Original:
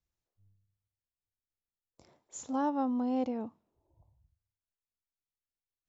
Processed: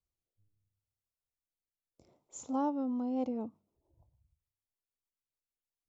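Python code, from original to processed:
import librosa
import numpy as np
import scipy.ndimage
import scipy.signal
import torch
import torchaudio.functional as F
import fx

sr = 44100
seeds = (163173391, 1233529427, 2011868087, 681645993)

y = fx.peak_eq(x, sr, hz=3800.0, db=-5.0, octaves=1.6)
y = fx.rotary_switch(y, sr, hz=0.7, then_hz=6.7, switch_at_s=2.53)
y = fx.peak_eq(y, sr, hz=1700.0, db=-13.0, octaves=0.29)
y = fx.hum_notches(y, sr, base_hz=50, count=4)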